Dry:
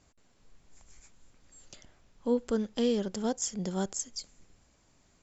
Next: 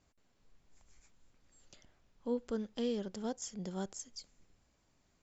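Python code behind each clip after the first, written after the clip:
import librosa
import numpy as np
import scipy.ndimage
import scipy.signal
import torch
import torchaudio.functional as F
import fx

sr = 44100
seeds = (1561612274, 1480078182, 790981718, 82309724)

y = scipy.signal.sosfilt(scipy.signal.butter(2, 6800.0, 'lowpass', fs=sr, output='sos'), x)
y = F.gain(torch.from_numpy(y), -7.5).numpy()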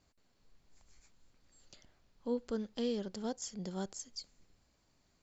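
y = fx.peak_eq(x, sr, hz=4400.0, db=6.5, octaves=0.26)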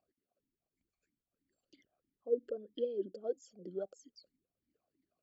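y = fx.envelope_sharpen(x, sr, power=2.0)
y = fx.vowel_sweep(y, sr, vowels='a-i', hz=3.1)
y = F.gain(torch.from_numpy(y), 9.0).numpy()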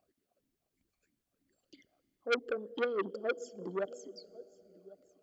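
y = x + 10.0 ** (-21.0 / 20.0) * np.pad(x, (int(1098 * sr / 1000.0), 0))[:len(x)]
y = fx.rev_plate(y, sr, seeds[0], rt60_s=4.5, hf_ratio=0.6, predelay_ms=0, drr_db=19.0)
y = fx.transformer_sat(y, sr, knee_hz=2100.0)
y = F.gain(torch.from_numpy(y), 6.5).numpy()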